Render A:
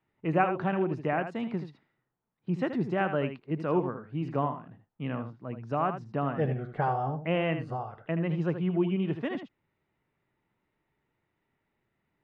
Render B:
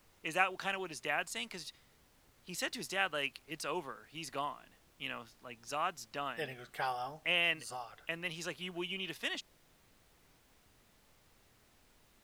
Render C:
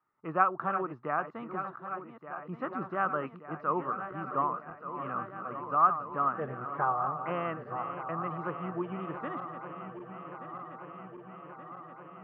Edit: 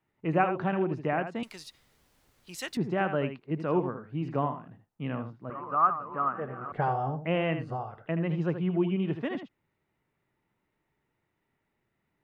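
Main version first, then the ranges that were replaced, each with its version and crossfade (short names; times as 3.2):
A
1.43–2.77 from B
5.5–6.72 from C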